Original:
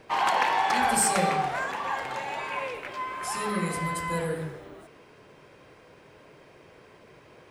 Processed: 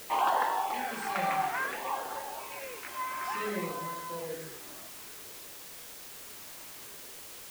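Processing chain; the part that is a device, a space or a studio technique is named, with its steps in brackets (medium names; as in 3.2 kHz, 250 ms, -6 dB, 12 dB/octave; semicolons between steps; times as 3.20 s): shortwave radio (band-pass 280–2800 Hz; tremolo 0.6 Hz, depth 57%; LFO notch sine 0.57 Hz 420–2400 Hz; white noise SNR 11 dB)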